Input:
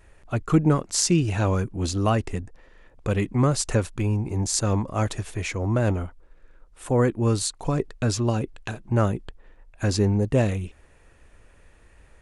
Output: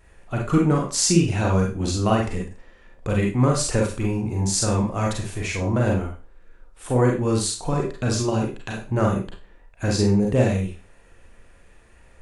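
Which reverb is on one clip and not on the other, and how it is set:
four-comb reverb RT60 0.33 s, combs from 32 ms, DRR −1 dB
level −1 dB

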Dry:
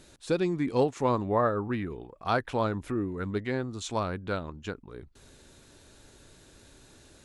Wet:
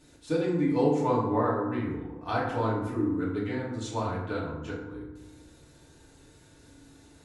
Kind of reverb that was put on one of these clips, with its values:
feedback delay network reverb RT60 1 s, low-frequency decay 1.35×, high-frequency decay 0.5×, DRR −7 dB
level −9 dB

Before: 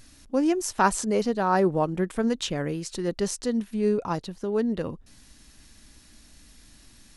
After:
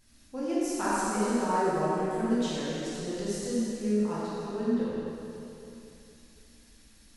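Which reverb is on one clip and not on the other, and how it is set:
dense smooth reverb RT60 2.9 s, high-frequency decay 0.95×, DRR −9.5 dB
level −14.5 dB

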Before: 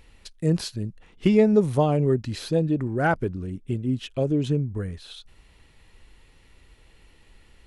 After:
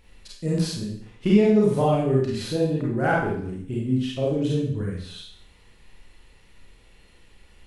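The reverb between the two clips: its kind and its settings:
four-comb reverb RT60 0.6 s, combs from 31 ms, DRR −5 dB
level −4.5 dB

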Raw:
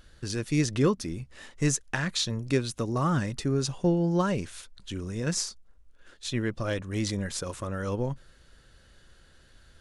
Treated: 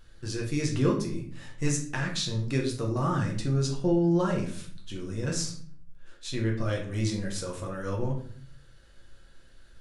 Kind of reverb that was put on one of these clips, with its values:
rectangular room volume 65 cubic metres, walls mixed, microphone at 0.77 metres
level −5 dB

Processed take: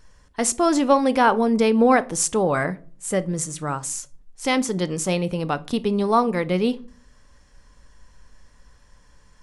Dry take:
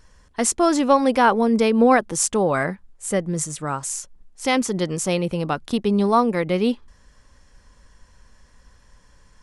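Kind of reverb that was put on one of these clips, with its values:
rectangular room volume 320 cubic metres, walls furnished, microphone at 0.36 metres
level −1 dB

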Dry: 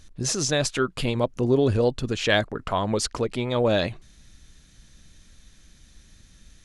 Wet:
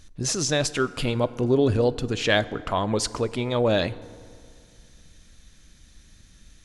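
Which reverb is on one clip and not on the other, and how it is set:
feedback delay network reverb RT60 2.3 s, low-frequency decay 0.95×, high-frequency decay 0.5×, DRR 16 dB

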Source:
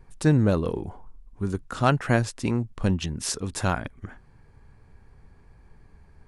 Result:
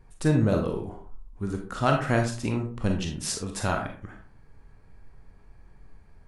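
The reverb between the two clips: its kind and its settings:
comb and all-pass reverb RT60 0.44 s, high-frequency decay 0.55×, pre-delay 0 ms, DRR 2 dB
level −3 dB

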